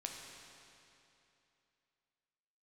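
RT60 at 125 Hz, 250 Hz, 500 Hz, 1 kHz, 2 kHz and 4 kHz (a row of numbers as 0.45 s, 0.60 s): 2.9 s, 2.9 s, 2.9 s, 2.9 s, 2.8 s, 2.6 s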